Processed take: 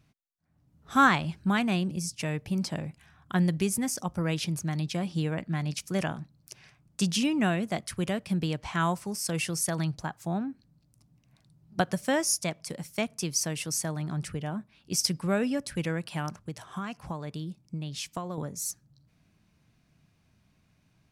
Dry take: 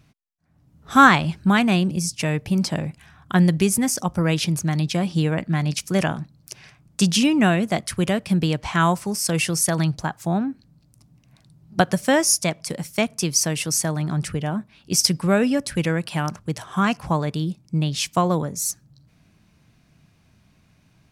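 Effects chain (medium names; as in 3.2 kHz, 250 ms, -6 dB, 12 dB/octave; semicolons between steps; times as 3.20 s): 16.41–18.38 s: compression 6:1, threshold -24 dBFS, peak gain reduction 9.5 dB; trim -8.5 dB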